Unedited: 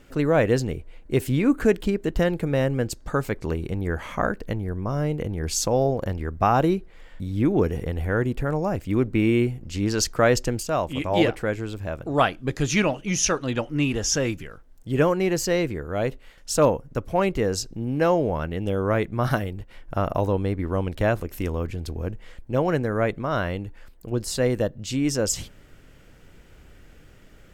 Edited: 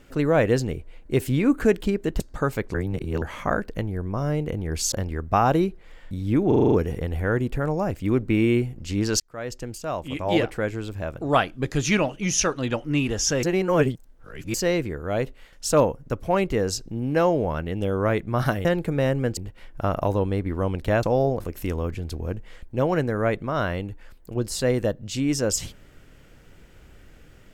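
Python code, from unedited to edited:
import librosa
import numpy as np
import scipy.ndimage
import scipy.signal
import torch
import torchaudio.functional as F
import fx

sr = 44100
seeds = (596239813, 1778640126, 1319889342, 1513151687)

y = fx.edit(x, sr, fx.move(start_s=2.2, length_s=0.72, to_s=19.5),
    fx.reverse_span(start_s=3.46, length_s=0.48),
    fx.move(start_s=5.64, length_s=0.37, to_s=21.16),
    fx.stutter(start_s=7.57, slice_s=0.04, count=7),
    fx.fade_in_span(start_s=10.05, length_s=1.83, curve='qsin'),
    fx.reverse_span(start_s=14.28, length_s=1.11), tone=tone)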